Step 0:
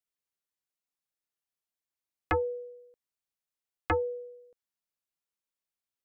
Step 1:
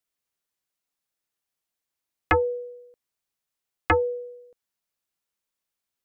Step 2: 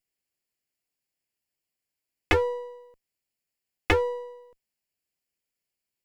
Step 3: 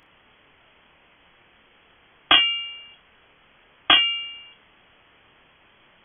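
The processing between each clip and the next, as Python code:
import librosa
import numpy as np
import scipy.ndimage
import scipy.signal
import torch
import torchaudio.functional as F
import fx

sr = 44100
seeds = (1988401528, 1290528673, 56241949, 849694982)

y1 = fx.dynamic_eq(x, sr, hz=2400.0, q=0.73, threshold_db=-44.0, ratio=4.0, max_db=5)
y1 = F.gain(torch.from_numpy(y1), 6.0).numpy()
y2 = fx.lower_of_two(y1, sr, delay_ms=0.4)
y3 = fx.dmg_noise_colour(y2, sr, seeds[0], colour='white', level_db=-55.0)
y3 = fx.freq_invert(y3, sr, carrier_hz=3300)
y3 = fx.room_early_taps(y3, sr, ms=(28, 63), db=(-5.5, -16.0))
y3 = F.gain(torch.from_numpy(y3), 5.0).numpy()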